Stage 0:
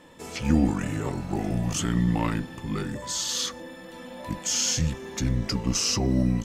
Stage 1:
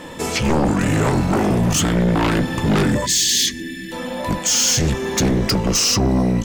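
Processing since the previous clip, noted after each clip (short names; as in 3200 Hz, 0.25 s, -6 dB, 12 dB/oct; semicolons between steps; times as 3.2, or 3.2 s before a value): vocal rider within 5 dB 0.5 s; sine folder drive 11 dB, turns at -11 dBFS; spectral gain 3.06–3.92, 440–1600 Hz -28 dB; gain -1.5 dB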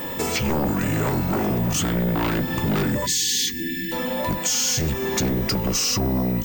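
compressor 3:1, threshold -25 dBFS, peak gain reduction 8 dB; whine 16000 Hz -32 dBFS; gain +2 dB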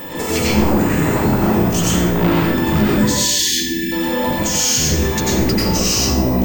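plate-style reverb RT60 0.81 s, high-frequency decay 0.8×, pre-delay 80 ms, DRR -5.5 dB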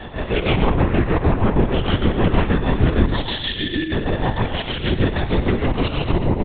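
chopper 6.4 Hz, depth 60%, duty 55%; on a send: feedback echo 0.118 s, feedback 45%, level -11.5 dB; on the sum: LPC vocoder at 8 kHz whisper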